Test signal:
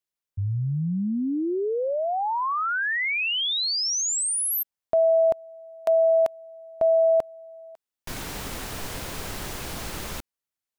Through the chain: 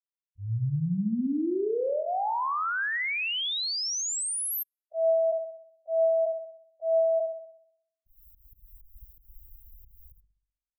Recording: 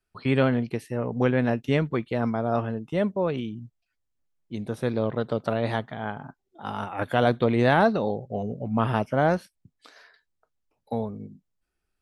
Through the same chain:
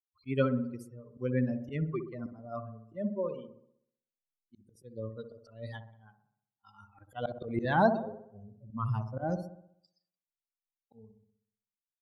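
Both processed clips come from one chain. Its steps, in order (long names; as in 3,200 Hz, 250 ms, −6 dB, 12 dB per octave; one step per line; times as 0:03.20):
spectral dynamics exaggerated over time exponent 3
high-shelf EQ 2,300 Hz −3.5 dB
volume swells 165 ms
delay with a low-pass on its return 63 ms, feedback 53%, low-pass 920 Hz, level −7 dB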